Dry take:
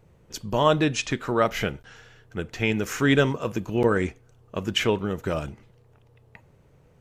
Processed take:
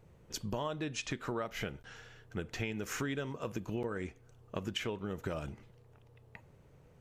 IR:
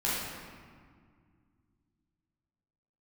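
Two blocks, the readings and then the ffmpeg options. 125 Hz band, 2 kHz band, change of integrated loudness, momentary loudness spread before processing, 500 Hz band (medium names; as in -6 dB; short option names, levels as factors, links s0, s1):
-12.5 dB, -13.5 dB, -14.5 dB, 16 LU, -15.0 dB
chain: -af "acompressor=threshold=0.0316:ratio=10,volume=0.668"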